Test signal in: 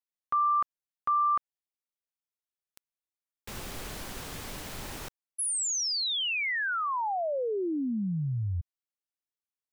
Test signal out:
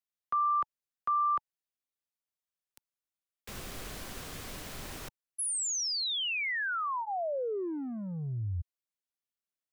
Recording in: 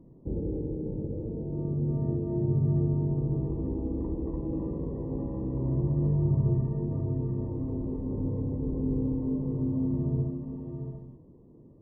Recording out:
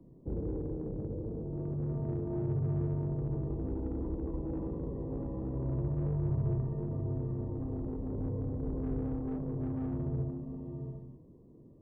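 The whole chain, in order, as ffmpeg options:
-filter_complex "[0:a]bandreject=f=870:w=12,acrossover=split=130|340[s0][s1][s2];[s1]asoftclip=type=tanh:threshold=0.0119[s3];[s0][s3][s2]amix=inputs=3:normalize=0,volume=0.75"

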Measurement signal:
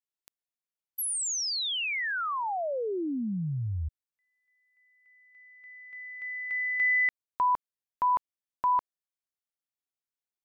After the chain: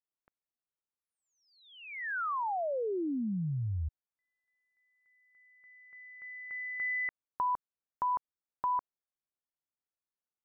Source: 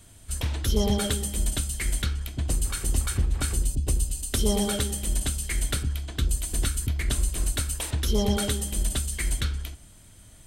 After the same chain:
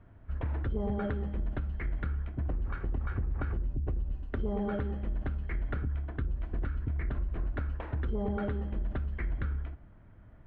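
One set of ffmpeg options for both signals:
-af "lowpass=f=1700:w=0.5412,lowpass=f=1700:w=1.3066,acompressor=threshold=0.0447:ratio=5:attack=10:release=62:knee=1,volume=0.794"

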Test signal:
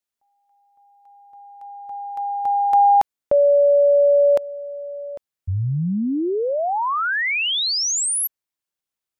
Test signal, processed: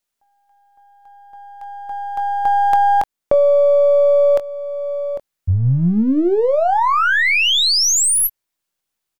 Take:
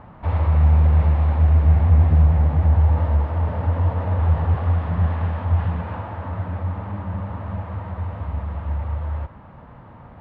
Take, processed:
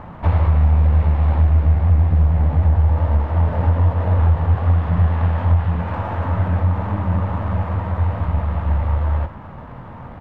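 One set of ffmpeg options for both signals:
-filter_complex "[0:a]aeval=exprs='if(lt(val(0),0),0.708*val(0),val(0))':c=same,asplit=2[s0][s1];[s1]adelay=23,volume=0.299[s2];[s0][s2]amix=inputs=2:normalize=0,acompressor=threshold=0.112:ratio=4:attack=11:release=994:knee=1:detection=rms,volume=2.66"

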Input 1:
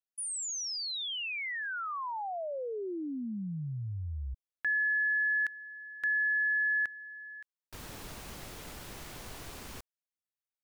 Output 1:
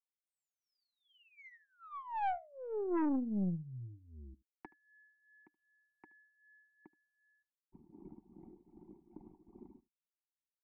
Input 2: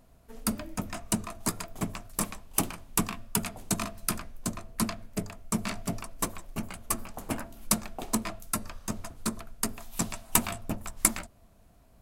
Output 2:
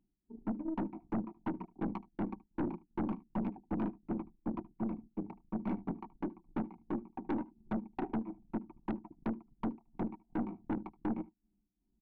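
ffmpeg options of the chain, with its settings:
-filter_complex "[0:a]anlmdn=0.631,acrossover=split=430[s0][s1];[s0]lowshelf=f=290:g=-7[s2];[s1]acompressor=threshold=0.0126:ratio=16:attack=20:release=448:knee=1:detection=peak[s3];[s2][s3]amix=inputs=2:normalize=0,tremolo=f=2.6:d=0.76,asplit=3[s4][s5][s6];[s4]bandpass=f=300:t=q:w=8,volume=1[s7];[s5]bandpass=f=870:t=q:w=8,volume=0.501[s8];[s6]bandpass=f=2240:t=q:w=8,volume=0.355[s9];[s7][s8][s9]amix=inputs=3:normalize=0,equalizer=f=4200:w=0.55:g=-10,alimiter=level_in=11.9:limit=0.0631:level=0:latency=1:release=23,volume=0.0841,adynamicsmooth=sensitivity=6.5:basefreq=690,aecho=1:1:5.3:0.5,aecho=1:1:75:0.0891,aeval=exprs='0.00708*(cos(1*acos(clip(val(0)/0.00708,-1,1)))-cos(1*PI/2))+0.000708*(cos(4*acos(clip(val(0)/0.00708,-1,1)))-cos(4*PI/2))+0.00251*(cos(5*acos(clip(val(0)/0.00708,-1,1)))-cos(5*PI/2))+0.000501*(cos(6*acos(clip(val(0)/0.00708,-1,1)))-cos(6*PI/2))+0.000891*(cos(8*acos(clip(val(0)/0.00708,-1,1)))-cos(8*PI/2))':c=same,volume=6.31"

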